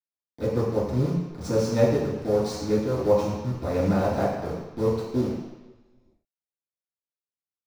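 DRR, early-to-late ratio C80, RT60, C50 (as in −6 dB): −12.5 dB, 4.5 dB, 1.1 s, 1.0 dB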